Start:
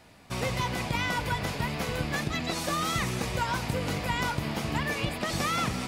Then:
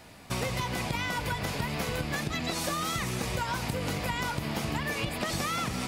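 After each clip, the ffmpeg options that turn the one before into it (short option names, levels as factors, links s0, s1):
-af "highshelf=f=7800:g=4.5,acompressor=threshold=0.0251:ratio=6,volume=1.58"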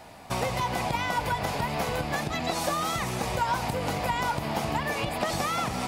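-af "equalizer=f=780:t=o:w=1:g=9.5"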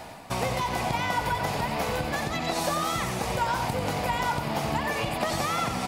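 -af "areverse,acompressor=mode=upward:threshold=0.0282:ratio=2.5,areverse,aecho=1:1:91:0.447"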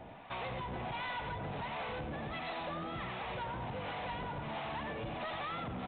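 -filter_complex "[0:a]acrossover=split=620[s0][s1];[s0]aeval=exprs='val(0)*(1-0.7/2+0.7/2*cos(2*PI*1.4*n/s))':c=same[s2];[s1]aeval=exprs='val(0)*(1-0.7/2-0.7/2*cos(2*PI*1.4*n/s))':c=same[s3];[s2][s3]amix=inputs=2:normalize=0,aresample=8000,asoftclip=type=tanh:threshold=0.0237,aresample=44100,volume=0.668"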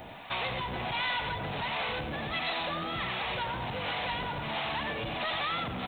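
-af "crystalizer=i=5.5:c=0,volume=1.5"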